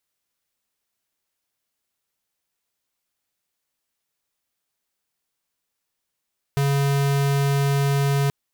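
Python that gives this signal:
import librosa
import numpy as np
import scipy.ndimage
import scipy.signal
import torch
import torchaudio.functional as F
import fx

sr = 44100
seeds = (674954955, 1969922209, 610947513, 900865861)

y = fx.tone(sr, length_s=1.73, wave='square', hz=140.0, level_db=-20.0)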